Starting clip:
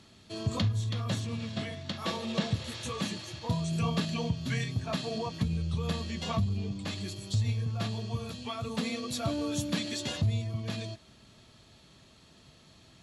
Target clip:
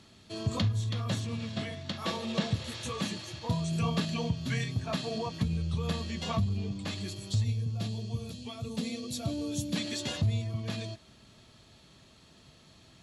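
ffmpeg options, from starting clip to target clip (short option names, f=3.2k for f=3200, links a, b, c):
-filter_complex "[0:a]asettb=1/sr,asplit=3[a][b][c];[a]atrim=end=7.444[d];[b]atrim=start=7.44:end=9.76,asetpts=PTS-STARTPTS,afade=t=in:d=0.004:c=qsin,afade=t=out:st=2.316:d=0.004:c=qsin,equalizer=f=1.3k:w=0.69:g=-12[e];[c]atrim=start=9.756[f];[d][e]acrossfade=d=0.004:c1=hsin:c2=qsin[g];[g][f]acrossfade=d=0.004:c1=qsin:c2=hsin"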